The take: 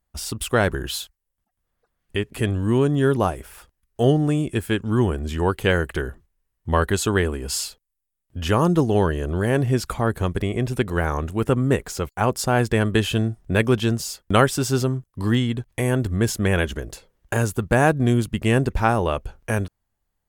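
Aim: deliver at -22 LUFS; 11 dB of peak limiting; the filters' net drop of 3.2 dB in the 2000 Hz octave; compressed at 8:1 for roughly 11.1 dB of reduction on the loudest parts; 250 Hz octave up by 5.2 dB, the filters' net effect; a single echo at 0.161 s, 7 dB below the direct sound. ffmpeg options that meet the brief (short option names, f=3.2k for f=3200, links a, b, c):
-af "equalizer=f=250:t=o:g=6.5,equalizer=f=2k:t=o:g=-4.5,acompressor=threshold=-22dB:ratio=8,alimiter=limit=-21.5dB:level=0:latency=1,aecho=1:1:161:0.447,volume=9.5dB"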